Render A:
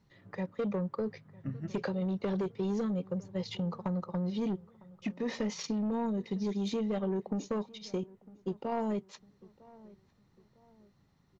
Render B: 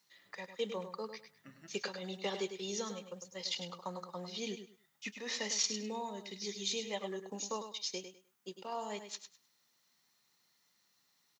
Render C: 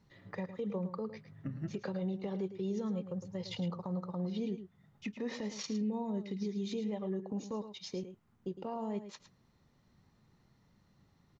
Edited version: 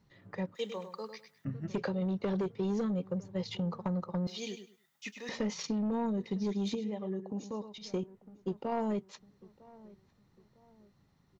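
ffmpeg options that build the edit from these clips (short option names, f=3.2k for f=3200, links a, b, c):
-filter_complex "[1:a]asplit=2[a][b];[0:a]asplit=4[c][d][e][f];[c]atrim=end=0.552[g];[a]atrim=start=0.548:end=1.452[h];[d]atrim=start=1.448:end=4.272[i];[b]atrim=start=4.268:end=5.292[j];[e]atrim=start=5.288:end=6.752[k];[2:a]atrim=start=6.748:end=7.782[l];[f]atrim=start=7.778[m];[g][h]acrossfade=d=0.004:c1=hsin:c2=hsin[n];[n][i]acrossfade=d=0.004:c1=hsin:c2=hsin[o];[o][j]acrossfade=d=0.004:c1=hsin:c2=hsin[p];[p][k]acrossfade=d=0.004:c1=hsin:c2=hsin[q];[q][l]acrossfade=d=0.004:c1=hsin:c2=hsin[r];[r][m]acrossfade=d=0.004:c1=hsin:c2=hsin"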